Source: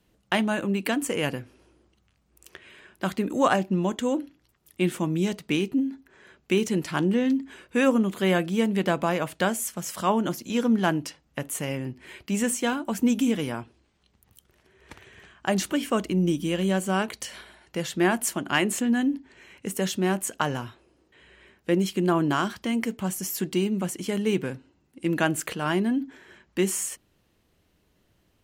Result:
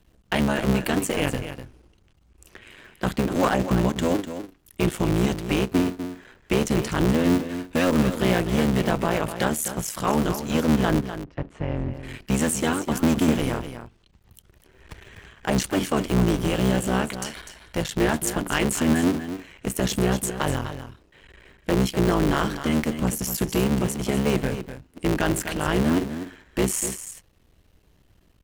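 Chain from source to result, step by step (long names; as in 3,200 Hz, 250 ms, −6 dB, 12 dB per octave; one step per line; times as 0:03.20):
sub-harmonics by changed cycles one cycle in 3, muted
in parallel at −0.5 dB: brickwall limiter −19.5 dBFS, peak gain reduction 10.5 dB
on the sum: low-shelf EQ 86 Hz +11.5 dB
hard clipping −11.5 dBFS, distortion −22 dB
0:10.99–0:11.91: head-to-tape spacing loss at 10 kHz 42 dB
on a send: single-tap delay 249 ms −10.5 dB
on the sum: level −1.5 dB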